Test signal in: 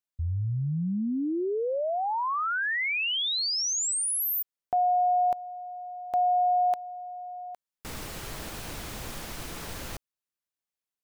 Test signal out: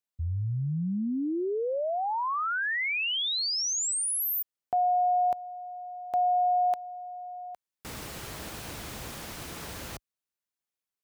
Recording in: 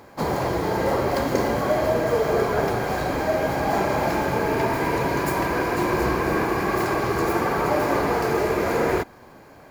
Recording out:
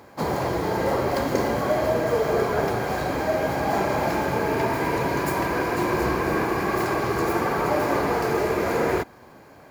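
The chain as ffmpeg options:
ffmpeg -i in.wav -af "highpass=49,volume=-1dB" out.wav

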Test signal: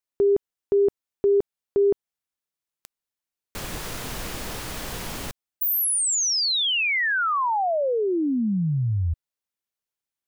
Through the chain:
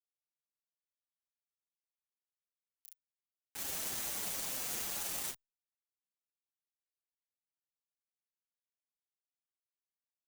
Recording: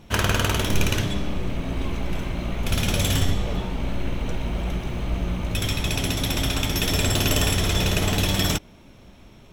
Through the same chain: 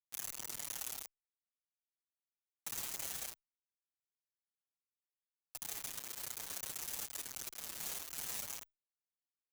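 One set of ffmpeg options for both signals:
ffmpeg -i in.wav -filter_complex "[0:a]afftfilt=real='re*(1-between(b*sr/4096,850,5700))':imag='im*(1-between(b*sr/4096,850,5700))':win_size=4096:overlap=0.75,acrossover=split=4400[link_01][link_02];[link_02]acompressor=threshold=-34dB:ratio=4:attack=1:release=60[link_03];[link_01][link_03]amix=inputs=2:normalize=0,highpass=frequency=260:width=0.5412,highpass=frequency=260:width=1.3066,highshelf=frequency=4100:gain=2,aecho=1:1:30|67.5|114.4|173|246.2:0.631|0.398|0.251|0.158|0.1,acompressor=threshold=-22dB:ratio=12:attack=1.1:release=232:knee=1:detection=peak,afftfilt=real='re*lt(hypot(re,im),0.0398)':imag='im*lt(hypot(re,im),0.0398)':win_size=1024:overlap=0.75,asoftclip=type=tanh:threshold=-35dB,acrusher=bits=5:mix=0:aa=0.000001,asplit=2[link_04][link_05];[link_05]adelay=6.6,afreqshift=-1.4[link_06];[link_04][link_06]amix=inputs=2:normalize=1,volume=6dB" out.wav

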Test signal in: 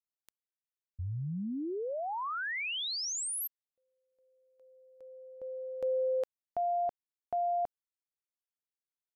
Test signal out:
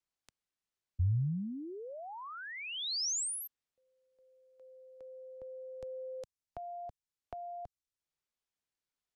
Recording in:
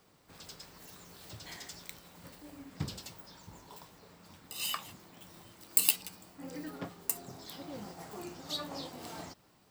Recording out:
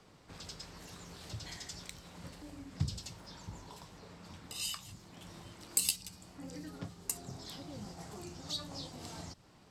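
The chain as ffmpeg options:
ffmpeg -i in.wav -filter_complex "[0:a]acrossover=split=150|4300[link_01][link_02][link_03];[link_02]acompressor=threshold=-53dB:ratio=3:attack=8:release=598:knee=2.83:detection=peak[link_04];[link_01][link_04][link_03]amix=inputs=3:normalize=0,lowpass=7700,lowshelf=frequency=140:gain=5.5,volume=4dB" out.wav

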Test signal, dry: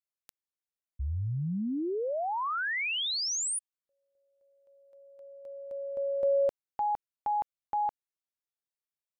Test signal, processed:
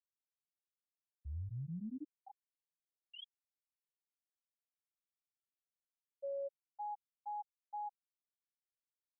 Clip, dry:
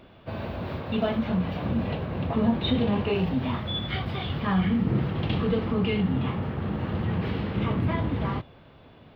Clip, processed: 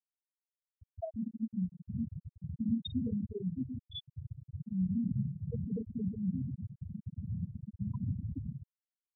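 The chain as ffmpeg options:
ffmpeg -i in.wav -filter_complex "[0:a]acrossover=split=460|1500[link_01][link_02][link_03];[link_03]adelay=210[link_04];[link_01]adelay=240[link_05];[link_05][link_02][link_04]amix=inputs=3:normalize=0,afftfilt=real='re*gte(hypot(re,im),0.316)':imag='im*gte(hypot(re,im),0.316)':win_size=1024:overlap=0.75,volume=-7.5dB" out.wav

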